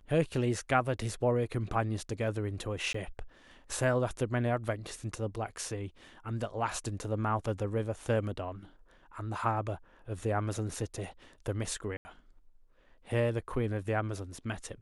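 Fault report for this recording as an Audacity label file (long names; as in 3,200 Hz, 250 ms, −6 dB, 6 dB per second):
2.930000	2.940000	drop-out 14 ms
11.970000	12.050000	drop-out 80 ms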